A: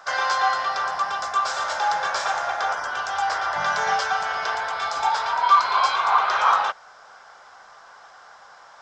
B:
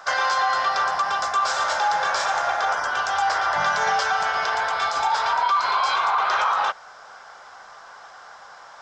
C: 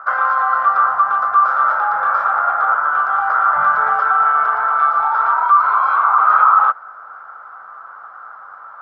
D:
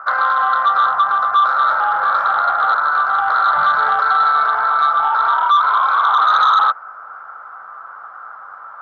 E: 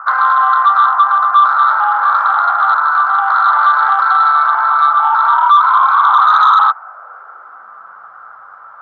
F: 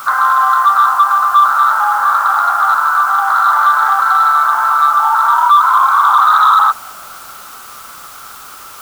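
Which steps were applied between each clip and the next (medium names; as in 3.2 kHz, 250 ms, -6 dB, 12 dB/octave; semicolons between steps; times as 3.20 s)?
peak limiter -16.5 dBFS, peak gain reduction 10.5 dB; trim +3.5 dB
resonant low-pass 1.3 kHz, resonance Q 10; trim -4 dB
sine folder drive 5 dB, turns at -1 dBFS; trim -7.5 dB
high-pass sweep 950 Hz -> 69 Hz, 6.65–8.52 s; trim -1.5 dB
word length cut 6-bit, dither triangular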